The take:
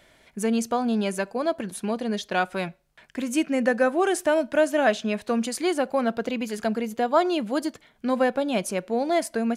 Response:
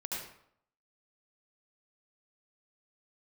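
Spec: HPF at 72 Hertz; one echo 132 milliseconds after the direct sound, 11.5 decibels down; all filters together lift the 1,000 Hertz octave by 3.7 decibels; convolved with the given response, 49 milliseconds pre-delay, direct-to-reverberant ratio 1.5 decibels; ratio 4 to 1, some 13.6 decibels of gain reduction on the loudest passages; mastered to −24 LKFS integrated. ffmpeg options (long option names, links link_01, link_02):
-filter_complex "[0:a]highpass=72,equalizer=frequency=1000:width_type=o:gain=5.5,acompressor=threshold=-30dB:ratio=4,aecho=1:1:132:0.266,asplit=2[link_01][link_02];[1:a]atrim=start_sample=2205,adelay=49[link_03];[link_02][link_03]afir=irnorm=-1:irlink=0,volume=-4dB[link_04];[link_01][link_04]amix=inputs=2:normalize=0,volume=7dB"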